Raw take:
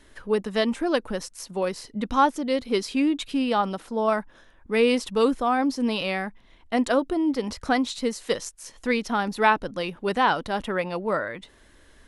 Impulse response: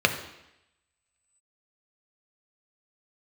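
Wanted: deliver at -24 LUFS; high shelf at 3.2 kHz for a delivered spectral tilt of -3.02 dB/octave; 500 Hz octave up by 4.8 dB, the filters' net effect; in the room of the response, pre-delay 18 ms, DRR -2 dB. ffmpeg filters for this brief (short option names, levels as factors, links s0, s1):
-filter_complex "[0:a]equalizer=f=500:t=o:g=5.5,highshelf=f=3200:g=4,asplit=2[s0][s1];[1:a]atrim=start_sample=2205,adelay=18[s2];[s1][s2]afir=irnorm=-1:irlink=0,volume=0.188[s3];[s0][s3]amix=inputs=2:normalize=0,volume=0.562"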